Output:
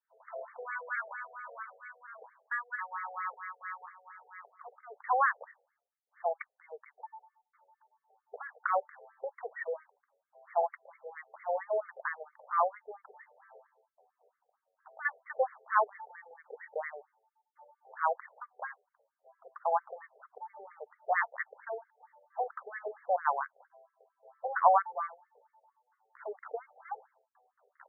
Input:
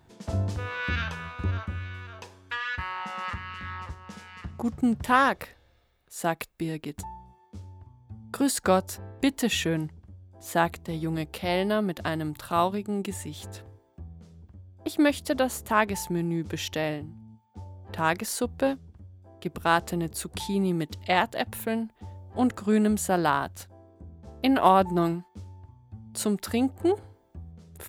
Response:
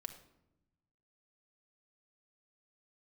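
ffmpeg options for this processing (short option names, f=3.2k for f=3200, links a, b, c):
-af "asubboost=boost=3.5:cutoff=200,agate=range=-33dB:threshold=-46dB:ratio=3:detection=peak,afftfilt=real='re*between(b*sr/1024,560*pow(1600/560,0.5+0.5*sin(2*PI*4.4*pts/sr))/1.41,560*pow(1600/560,0.5+0.5*sin(2*PI*4.4*pts/sr))*1.41)':imag='im*between(b*sr/1024,560*pow(1600/560,0.5+0.5*sin(2*PI*4.4*pts/sr))/1.41,560*pow(1600/560,0.5+0.5*sin(2*PI*4.4*pts/sr))*1.41)':win_size=1024:overlap=0.75"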